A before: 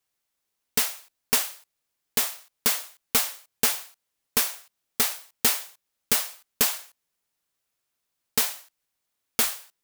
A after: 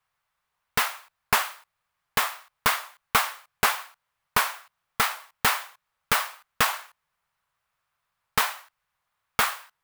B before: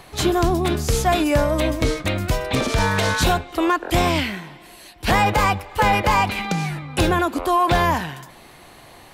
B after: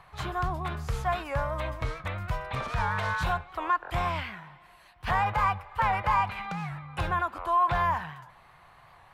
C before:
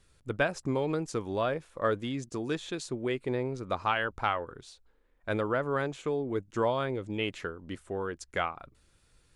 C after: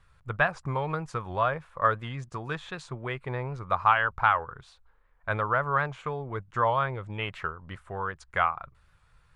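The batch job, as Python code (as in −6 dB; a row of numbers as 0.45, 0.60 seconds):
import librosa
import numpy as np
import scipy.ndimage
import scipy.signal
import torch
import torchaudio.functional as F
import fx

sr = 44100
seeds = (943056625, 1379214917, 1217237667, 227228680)

y = fx.curve_eq(x, sr, hz=(150.0, 280.0, 1100.0, 6200.0), db=(0, -16, 6, -13))
y = fx.record_warp(y, sr, rpm=78.0, depth_cents=100.0)
y = y * 10.0 ** (-30 / 20.0) / np.sqrt(np.mean(np.square(y)))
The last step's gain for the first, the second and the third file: +7.0, −9.5, +4.0 decibels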